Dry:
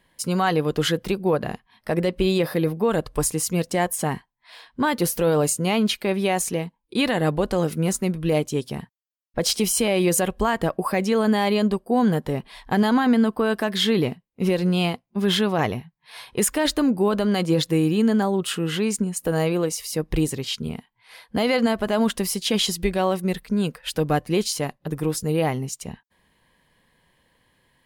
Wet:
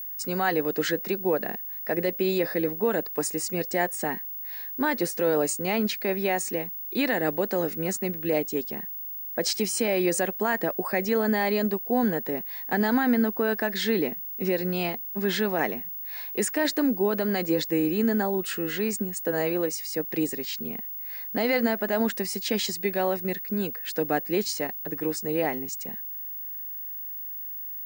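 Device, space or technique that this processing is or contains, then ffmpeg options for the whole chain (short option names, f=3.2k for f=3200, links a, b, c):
old television with a line whistle: -af "highpass=f=210:w=0.5412,highpass=f=210:w=1.3066,equalizer=f=1.1k:t=q:w=4:g=-7,equalizer=f=1.8k:t=q:w=4:g=6,equalizer=f=3.2k:t=q:w=4:g=-9,lowpass=f=8.4k:w=0.5412,lowpass=f=8.4k:w=1.3066,aeval=exprs='val(0)+0.0316*sin(2*PI*15625*n/s)':c=same,volume=-3dB"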